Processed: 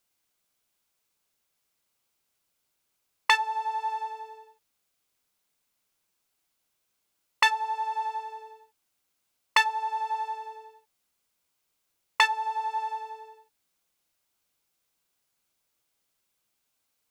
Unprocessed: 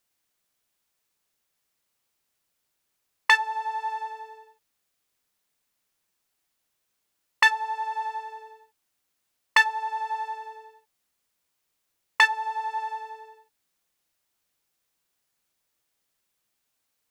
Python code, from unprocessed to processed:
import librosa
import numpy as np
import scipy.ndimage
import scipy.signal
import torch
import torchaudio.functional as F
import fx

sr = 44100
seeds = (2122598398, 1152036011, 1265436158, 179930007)

y = fx.notch(x, sr, hz=1800.0, q=12.0)